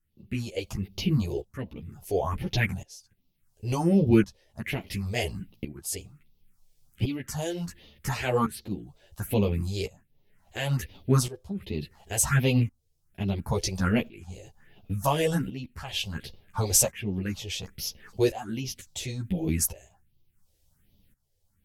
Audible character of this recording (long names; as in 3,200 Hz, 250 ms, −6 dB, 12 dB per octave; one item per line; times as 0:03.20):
phaser sweep stages 4, 1.3 Hz, lowest notch 200–1,600 Hz
tremolo saw up 0.71 Hz, depth 85%
a shimmering, thickened sound